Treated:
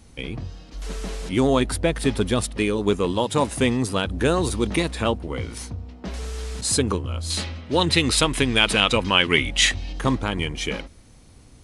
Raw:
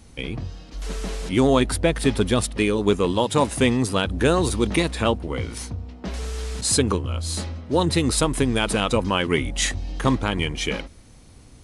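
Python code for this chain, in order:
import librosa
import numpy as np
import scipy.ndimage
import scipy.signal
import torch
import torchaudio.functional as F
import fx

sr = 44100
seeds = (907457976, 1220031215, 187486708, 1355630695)

y = fx.peak_eq(x, sr, hz=2800.0, db=10.5, octaves=1.8, at=(7.3, 9.93))
y = y * 10.0 ** (-1.5 / 20.0)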